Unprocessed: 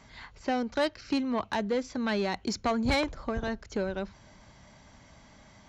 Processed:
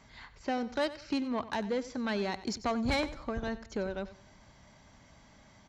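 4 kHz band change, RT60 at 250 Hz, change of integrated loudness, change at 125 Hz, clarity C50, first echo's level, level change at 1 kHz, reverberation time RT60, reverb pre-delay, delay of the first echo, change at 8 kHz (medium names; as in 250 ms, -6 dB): -3.5 dB, no reverb, -3.5 dB, -3.5 dB, no reverb, -15.5 dB, -3.5 dB, no reverb, no reverb, 93 ms, -3.5 dB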